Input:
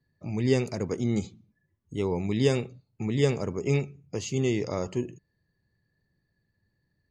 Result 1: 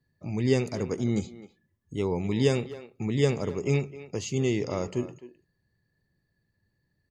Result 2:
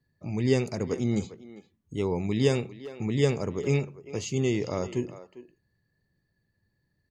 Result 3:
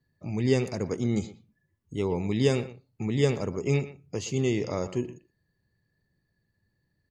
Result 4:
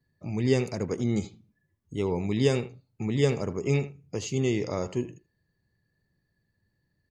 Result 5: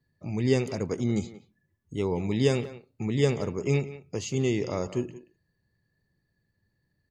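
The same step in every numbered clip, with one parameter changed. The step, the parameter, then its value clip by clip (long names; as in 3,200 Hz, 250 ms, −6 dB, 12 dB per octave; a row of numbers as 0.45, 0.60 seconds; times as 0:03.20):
far-end echo of a speakerphone, delay time: 260, 400, 120, 80, 180 milliseconds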